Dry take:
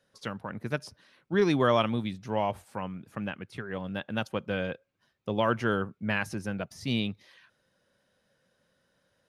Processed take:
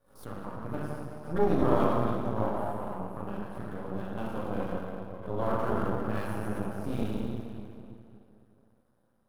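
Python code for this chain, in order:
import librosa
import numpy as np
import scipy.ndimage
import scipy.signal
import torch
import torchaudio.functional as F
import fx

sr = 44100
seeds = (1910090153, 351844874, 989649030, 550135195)

y = fx.low_shelf(x, sr, hz=160.0, db=3.5)
y = fx.rev_plate(y, sr, seeds[0], rt60_s=2.7, hf_ratio=0.75, predelay_ms=0, drr_db=-9.0)
y = np.maximum(y, 0.0)
y = fx.band_shelf(y, sr, hz=3600.0, db=-14.0, octaves=2.5)
y = fx.pre_swell(y, sr, db_per_s=130.0)
y = y * 10.0 ** (-6.5 / 20.0)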